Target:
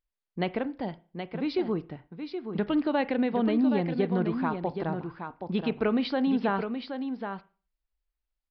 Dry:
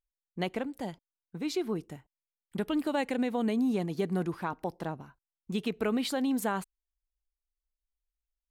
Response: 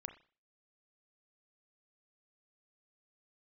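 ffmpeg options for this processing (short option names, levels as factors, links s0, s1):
-filter_complex "[0:a]aecho=1:1:773:0.422,asplit=2[s0][s1];[1:a]atrim=start_sample=2205,lowpass=3000[s2];[s1][s2]afir=irnorm=-1:irlink=0,volume=0.841[s3];[s0][s3]amix=inputs=2:normalize=0,aresample=11025,aresample=44100"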